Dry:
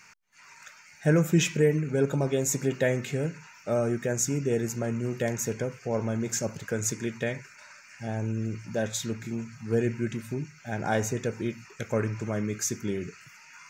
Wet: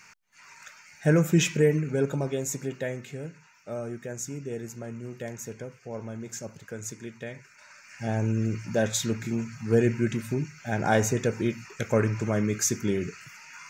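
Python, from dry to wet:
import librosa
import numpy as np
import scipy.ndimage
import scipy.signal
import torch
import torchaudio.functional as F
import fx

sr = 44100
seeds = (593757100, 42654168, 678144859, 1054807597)

y = fx.gain(x, sr, db=fx.line((1.75, 1.0), (3.05, -8.0), (7.29, -8.0), (8.08, 4.0)))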